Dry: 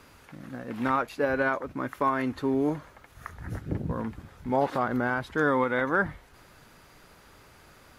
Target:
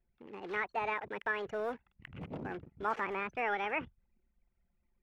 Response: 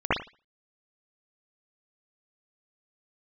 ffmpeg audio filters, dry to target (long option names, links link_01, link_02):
-filter_complex "[0:a]asetrate=70119,aresample=44100,acrossover=split=2600[link_01][link_02];[link_02]acompressor=threshold=-50dB:ratio=4:attack=1:release=60[link_03];[link_01][link_03]amix=inputs=2:normalize=0,anlmdn=0.1,acrossover=split=680|850[link_04][link_05][link_06];[link_04]asoftclip=type=tanh:threshold=-29.5dB[link_07];[link_07][link_05][link_06]amix=inputs=3:normalize=0,volume=-7dB"